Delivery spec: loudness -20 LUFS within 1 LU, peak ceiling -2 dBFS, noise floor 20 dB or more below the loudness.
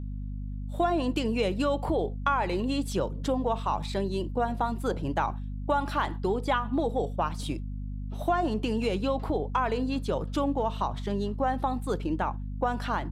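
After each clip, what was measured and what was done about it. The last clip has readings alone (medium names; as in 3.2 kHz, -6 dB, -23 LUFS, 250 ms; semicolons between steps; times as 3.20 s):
hum 50 Hz; highest harmonic 250 Hz; hum level -32 dBFS; loudness -29.5 LUFS; peak level -13.0 dBFS; loudness target -20.0 LUFS
-> de-hum 50 Hz, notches 5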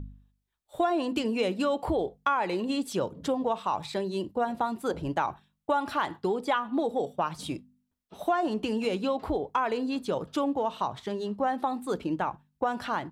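hum not found; loudness -30.0 LUFS; peak level -13.0 dBFS; loudness target -20.0 LUFS
-> trim +10 dB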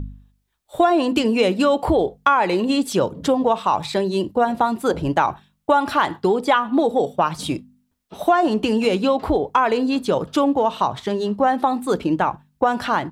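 loudness -20.0 LUFS; peak level -3.0 dBFS; noise floor -69 dBFS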